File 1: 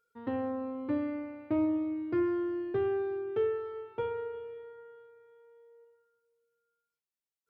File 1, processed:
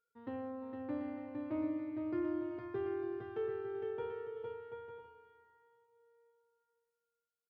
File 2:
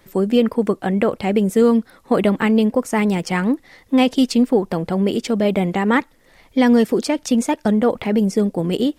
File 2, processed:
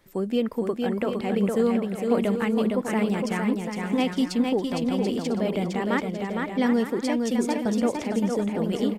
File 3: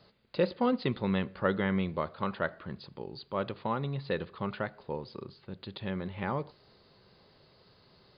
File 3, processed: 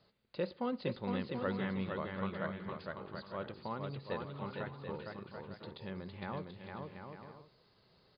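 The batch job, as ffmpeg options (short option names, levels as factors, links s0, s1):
-af "aecho=1:1:460|736|901.6|1001|1061:0.631|0.398|0.251|0.158|0.1,volume=0.355"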